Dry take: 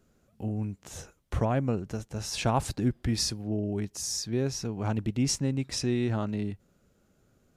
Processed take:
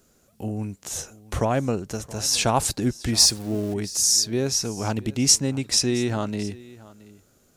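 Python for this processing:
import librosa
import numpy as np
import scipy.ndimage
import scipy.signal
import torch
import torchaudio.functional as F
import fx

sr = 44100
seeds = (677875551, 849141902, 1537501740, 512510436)

y = fx.zero_step(x, sr, step_db=-45.0, at=(3.19, 3.74))
y = fx.bass_treble(y, sr, bass_db=-5, treble_db=9)
y = y + 10.0 ** (-20.5 / 20.0) * np.pad(y, (int(672 * sr / 1000.0), 0))[:len(y)]
y = y * librosa.db_to_amplitude(6.0)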